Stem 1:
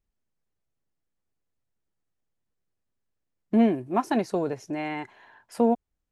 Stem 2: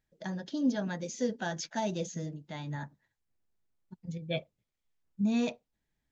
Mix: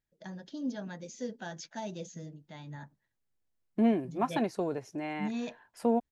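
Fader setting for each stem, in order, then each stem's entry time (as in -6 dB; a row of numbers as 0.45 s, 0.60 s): -5.5 dB, -6.5 dB; 0.25 s, 0.00 s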